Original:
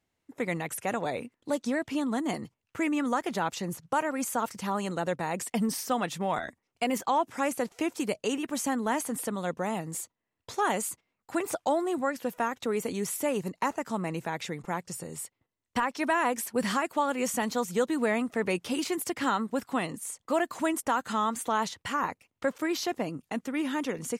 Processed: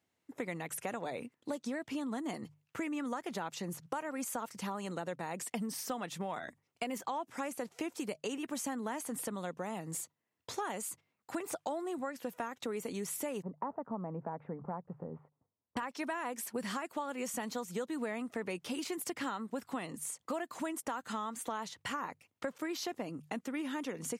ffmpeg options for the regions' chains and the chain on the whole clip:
-filter_complex "[0:a]asettb=1/sr,asplit=3[s0][s1][s2];[s0]atrim=end=13.424[s3];[s1]atrim=start=13.42:end=15.77,asetpts=PTS-STARTPTS,afade=t=in:d=0.004:c=qsin,afade=t=out:st=2.346:d=0.004:c=qsin,lowpass=f=1100:w=0.5412,lowpass=f=1100:w=1.3066,equalizer=f=340:t=o:w=0.21:g=-8[s4];[s2]atrim=start=15.766[s5];[s3][s4]acrossfade=d=0.004:c1=hsin:c2=qsin[s6];[s6][s5]acrossfade=d=0.004:c1=qsin:c2=hsin,highpass=96,bandreject=f=50:t=h:w=6,bandreject=f=100:t=h:w=6,bandreject=f=150:t=h:w=6,acompressor=threshold=0.0178:ratio=4,volume=0.891"

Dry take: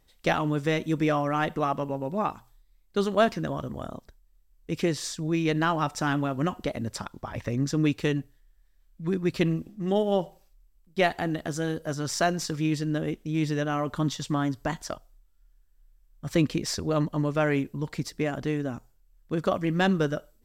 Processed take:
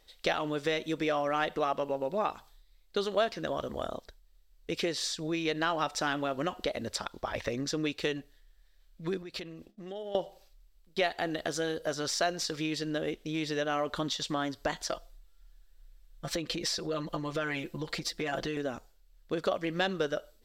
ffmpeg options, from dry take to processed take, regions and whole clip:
-filter_complex "[0:a]asettb=1/sr,asplit=3[s0][s1][s2];[s0]atrim=end=9.224[s3];[s1]atrim=start=9.22:end=10.15,asetpts=PTS-STARTPTS,afade=t=in:d=0.004:c=qsin,afade=t=out:st=0.926:d=0.004:c=qsin,agate=range=0.0224:threshold=0.0112:ratio=3:release=100:detection=peak,acompressor=threshold=0.0126:ratio=8:attack=3.2:release=140:knee=1:detection=peak[s4];[s2]atrim=start=10.146[s5];[s3][s4]acrossfade=d=0.004:c1=hsin:c2=qsin[s6];[s6][s5]acrossfade=d=0.004:c1=qsin:c2=hsin,asettb=1/sr,asplit=3[s7][s8][s9];[s7]atrim=end=14.894[s10];[s8]atrim=start=14.89:end=18.57,asetpts=PTS-STARTPTS,afade=t=in:d=0.004:c=qsin,afade=t=out:st=3.676:d=0.004:c=qsin,aecho=1:1:5.9:0.85,atrim=end_sample=162288,acompressor=threshold=0.0501:ratio=6:attack=3.2:release=140:knee=1:detection=peak[s11];[s9]atrim=start=18.566[s12];[s10][s11]acrossfade=d=0.004:c1=hsin:c2=qsin[s13];[s13][s12]acrossfade=d=0.004:c1=qsin:c2=hsin,equalizer=f=125:t=o:w=1:g=-10,equalizer=f=250:t=o:w=1:g=-4,equalizer=f=500:t=o:w=1:g=3,equalizer=f=1000:t=o:w=1:g=-7,equalizer=f=4000:t=o:w=1:g=9,acompressor=threshold=0.02:ratio=2.5,equalizer=f=1000:w=0.58:g=7.5"

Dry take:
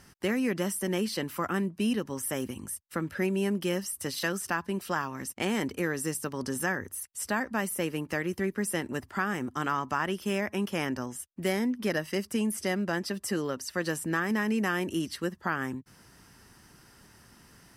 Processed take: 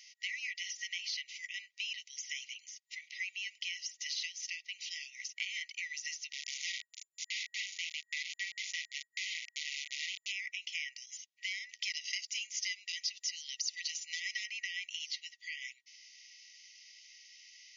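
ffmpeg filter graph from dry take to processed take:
-filter_complex "[0:a]asettb=1/sr,asplit=3[s0][s1][s2];[s0]atrim=end=6.334[s3];[s1]atrim=start=6.33:end=10.32,asetpts=PTS-STARTPTS,afade=t=in:d=0.004:c=qsin,afade=t=out:st=3.986:d=0.004:c=qsin,asplit=2[s4][s5];[s5]adelay=42,volume=0.501[s6];[s4][s6]amix=inputs=2:normalize=0,atrim=end_sample=175959,aeval=exprs='val(0)*gte(abs(val(0)),0.0398)':c=same[s7];[s2]atrim=start=10.316[s8];[s3][s7]acrossfade=d=0.004:c1=hsin:c2=qsin[s9];[s9][s8]acrossfade=d=0.004:c1=qsin:c2=hsin,asettb=1/sr,asplit=3[s10][s11][s12];[s10]atrim=end=11.694[s13];[s11]atrim=start=11.69:end=14.46,asetpts=PTS-STARTPTS,afade=t=in:d=0.004:c=qsin,afade=t=out:st=2.766:d=0.004:c=qsin,highshelf=f=3000:g=11.5,volume=7.5,asoftclip=hard,volume=0.133[s14];[s12]atrim=start=14.456[s15];[s13][s14]acrossfade=d=0.004:c1=hsin:c2=qsin[s16];[s16][s15]acrossfade=d=0.004:c1=qsin:c2=hsin,afftfilt=real='re*between(b*sr/4096,1900,7100)':imag='im*between(b*sr/4096,1900,7100)':win_size=4096:overlap=0.75,acompressor=threshold=0.00631:ratio=3,volume=2.11"

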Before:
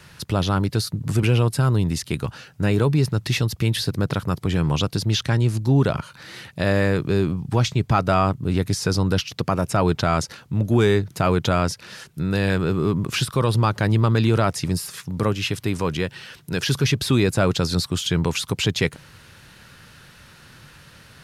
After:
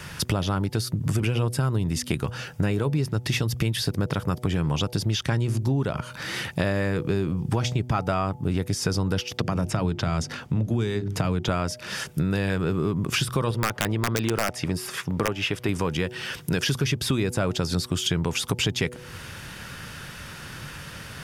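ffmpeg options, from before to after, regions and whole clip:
-filter_complex "[0:a]asettb=1/sr,asplit=3[s0][s1][s2];[s0]atrim=end=9.374[s3];[s1]atrim=start=9.37:end=11.49,asetpts=PTS-STARTPTS,afade=t=in:d=0.004:c=qsin,afade=t=out:st=2.116:d=0.004:c=qsin,highshelf=f=8200:g=-11.5,acrossover=split=280|3000[s4][s5][s6];[s5]acompressor=threshold=0.0316:ratio=2.5:attack=3.2:release=140:knee=2.83:detection=peak[s7];[s4][s7][s6]amix=inputs=3:normalize=0,bandreject=f=50:t=h:w=6,bandreject=f=100:t=h:w=6,bandreject=f=150:t=h:w=6,bandreject=f=200:t=h:w=6,bandreject=f=250:t=h:w=6,bandreject=f=300:t=h:w=6,bandreject=f=350:t=h:w=6,bandreject=f=400:t=h:w=6[s8];[s2]atrim=start=11.486[s9];[s3][s8]acrossfade=d=0.004:c1=hsin:c2=qsin[s10];[s10][s9]acrossfade=d=0.004:c1=qsin:c2=hsin,asettb=1/sr,asplit=3[s11][s12][s13];[s11]atrim=end=13.514[s14];[s12]atrim=start=13.51:end=15.69,asetpts=PTS-STARTPTS,afade=t=in:d=0.004:c=qsin,afade=t=out:st=2.176:d=0.004:c=qsin,bass=f=250:g=-7,treble=f=4000:g=-9,aeval=exprs='(mod(3.55*val(0)+1,2)-1)/3.55':c=same[s15];[s13]atrim=start=15.686[s16];[s14][s15]acrossfade=d=0.004:c1=hsin:c2=qsin[s17];[s17][s16]acrossfade=d=0.004:c1=qsin:c2=hsin,bandreject=f=4100:w=8.8,bandreject=f=122.9:t=h:w=4,bandreject=f=245.8:t=h:w=4,bandreject=f=368.7:t=h:w=4,bandreject=f=491.6:t=h:w=4,bandreject=f=614.5:t=h:w=4,bandreject=f=737.4:t=h:w=4,bandreject=f=860.3:t=h:w=4,acompressor=threshold=0.0282:ratio=5,volume=2.66"

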